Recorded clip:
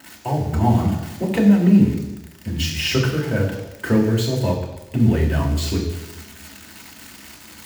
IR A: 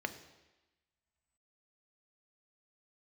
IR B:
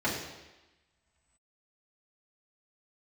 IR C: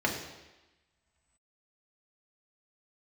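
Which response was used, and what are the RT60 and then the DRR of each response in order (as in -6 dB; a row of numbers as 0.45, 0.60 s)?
C; 1.1, 1.1, 1.1 s; 8.0, -8.0, -1.5 dB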